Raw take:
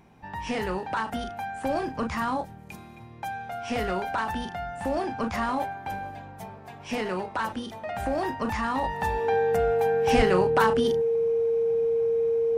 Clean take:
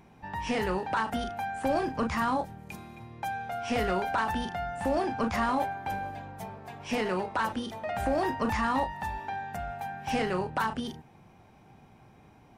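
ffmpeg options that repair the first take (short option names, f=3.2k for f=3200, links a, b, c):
-filter_complex "[0:a]bandreject=f=460:w=30,asplit=3[a][b][c];[a]afade=t=out:st=10.16:d=0.02[d];[b]highpass=f=140:w=0.5412,highpass=f=140:w=1.3066,afade=t=in:st=10.16:d=0.02,afade=t=out:st=10.28:d=0.02[e];[c]afade=t=in:st=10.28:d=0.02[f];[d][e][f]amix=inputs=3:normalize=0,asetnsamples=n=441:p=0,asendcmd='8.84 volume volume -6.5dB',volume=0dB"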